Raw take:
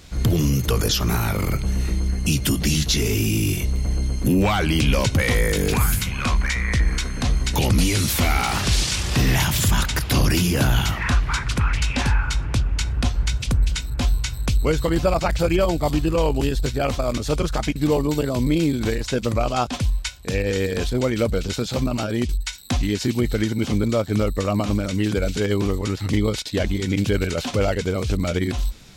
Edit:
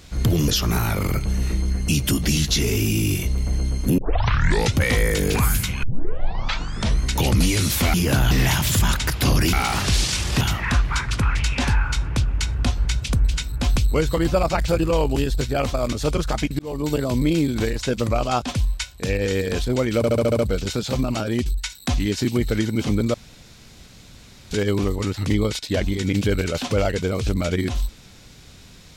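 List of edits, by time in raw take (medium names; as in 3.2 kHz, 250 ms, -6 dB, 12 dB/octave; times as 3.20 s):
0.48–0.86 s: delete
4.36 s: tape start 0.77 s
6.21 s: tape start 1.17 s
8.32–9.20 s: swap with 10.42–10.79 s
14.14–14.47 s: delete
15.50–16.04 s: delete
17.84–18.18 s: fade in
21.22 s: stutter 0.07 s, 7 plays
23.97–25.34 s: room tone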